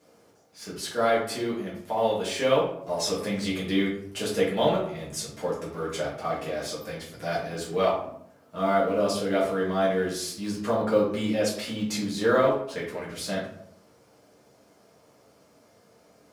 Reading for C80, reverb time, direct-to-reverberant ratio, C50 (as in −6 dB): 8.0 dB, 0.65 s, −7.5 dB, 4.5 dB